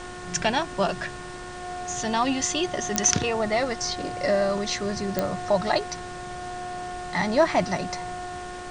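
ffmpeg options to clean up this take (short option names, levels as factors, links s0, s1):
-af "adeclick=t=4,bandreject=f=360.4:t=h:w=4,bandreject=f=720.8:t=h:w=4,bandreject=f=1081.2:t=h:w=4,bandreject=f=1441.6:t=h:w=4,bandreject=f=1802:t=h:w=4,bandreject=f=720:w=30,afftdn=nr=30:nf=-37"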